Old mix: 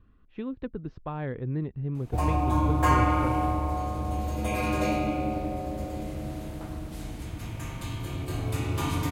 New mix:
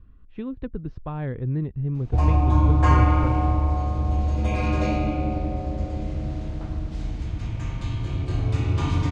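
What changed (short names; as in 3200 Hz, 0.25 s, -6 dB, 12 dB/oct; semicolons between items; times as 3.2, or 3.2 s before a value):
background: add LPF 6300 Hz 24 dB/oct; master: add low shelf 130 Hz +12 dB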